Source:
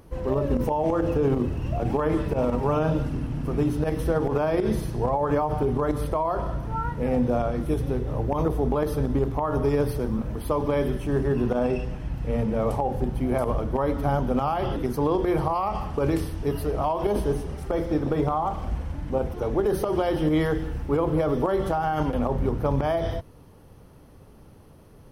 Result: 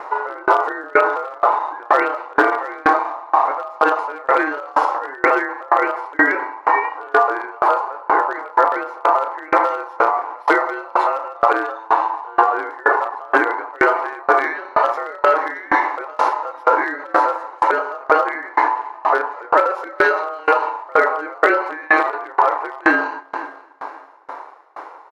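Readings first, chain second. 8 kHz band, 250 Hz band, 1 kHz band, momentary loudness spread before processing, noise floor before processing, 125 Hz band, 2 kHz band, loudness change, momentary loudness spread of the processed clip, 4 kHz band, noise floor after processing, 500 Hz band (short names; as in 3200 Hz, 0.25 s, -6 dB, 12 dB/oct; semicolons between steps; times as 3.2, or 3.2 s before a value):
n/a, -3.5 dB, +13.5 dB, 5 LU, -49 dBFS, under -25 dB, +21.5 dB, +7.5 dB, 5 LU, +5.0 dB, -40 dBFS, +4.0 dB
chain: LPF 3500 Hz 12 dB/oct; bell 2400 Hz -13.5 dB 0.3 oct; notch 1600 Hz, Q 13; compressor 1.5:1, threshold -29 dBFS, peak gain reduction 4 dB; ring modulator 940 Hz; hard clip -20 dBFS, distortion -27 dB; brick-wall FIR high-pass 280 Hz; doubler 33 ms -12 dB; feedback echo 0.267 s, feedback 55%, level -17 dB; maximiser +24 dB; dB-ramp tremolo decaying 2.1 Hz, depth 29 dB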